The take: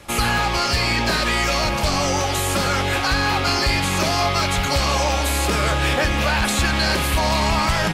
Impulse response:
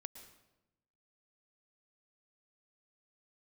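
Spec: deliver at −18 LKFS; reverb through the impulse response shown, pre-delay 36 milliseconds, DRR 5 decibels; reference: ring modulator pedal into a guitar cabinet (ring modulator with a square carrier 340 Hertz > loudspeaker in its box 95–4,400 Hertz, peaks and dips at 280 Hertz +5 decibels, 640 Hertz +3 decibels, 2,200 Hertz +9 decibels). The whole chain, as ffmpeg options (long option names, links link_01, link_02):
-filter_complex "[0:a]asplit=2[link_01][link_02];[1:a]atrim=start_sample=2205,adelay=36[link_03];[link_02][link_03]afir=irnorm=-1:irlink=0,volume=-0.5dB[link_04];[link_01][link_04]amix=inputs=2:normalize=0,aeval=exprs='val(0)*sgn(sin(2*PI*340*n/s))':channel_layout=same,highpass=95,equalizer=frequency=280:width_type=q:width=4:gain=5,equalizer=frequency=640:width_type=q:width=4:gain=3,equalizer=frequency=2200:width_type=q:width=4:gain=9,lowpass=frequency=4400:width=0.5412,lowpass=frequency=4400:width=1.3066,volume=-2.5dB"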